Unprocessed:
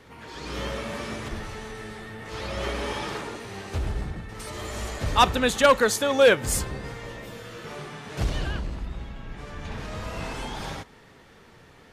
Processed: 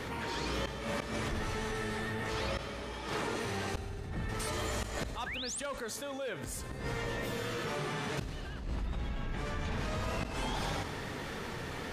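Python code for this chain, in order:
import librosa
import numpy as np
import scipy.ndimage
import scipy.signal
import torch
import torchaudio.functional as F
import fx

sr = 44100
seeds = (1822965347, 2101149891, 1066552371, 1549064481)

y = fx.spec_paint(x, sr, seeds[0], shape='rise', start_s=5.26, length_s=0.34, low_hz=1500.0, high_hz=10000.0, level_db=-21.0)
y = fx.gate_flip(y, sr, shuts_db=-21.0, range_db=-26)
y = fx.rev_fdn(y, sr, rt60_s=1.8, lf_ratio=1.5, hf_ratio=0.95, size_ms=23.0, drr_db=19.5)
y = fx.env_flatten(y, sr, amount_pct=70)
y = y * 10.0 ** (-5.0 / 20.0)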